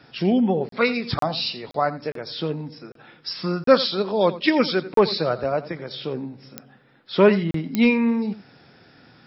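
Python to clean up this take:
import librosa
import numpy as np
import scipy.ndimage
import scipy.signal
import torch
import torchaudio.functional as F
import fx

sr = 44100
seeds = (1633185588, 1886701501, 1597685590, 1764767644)

y = fx.fix_declick_ar(x, sr, threshold=10.0)
y = fx.fix_interpolate(y, sr, at_s=(0.69, 1.19, 1.71, 2.12, 2.92, 3.64, 4.94, 7.51), length_ms=33.0)
y = fx.fix_echo_inverse(y, sr, delay_ms=86, level_db=-16.0)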